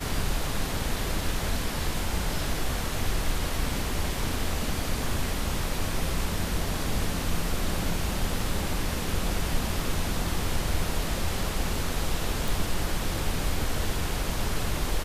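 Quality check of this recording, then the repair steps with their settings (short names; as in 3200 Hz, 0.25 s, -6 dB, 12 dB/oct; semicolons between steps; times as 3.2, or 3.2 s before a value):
12.48 pop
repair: de-click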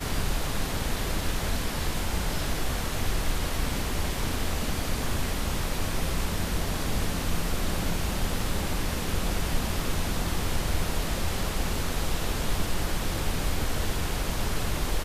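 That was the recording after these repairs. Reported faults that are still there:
none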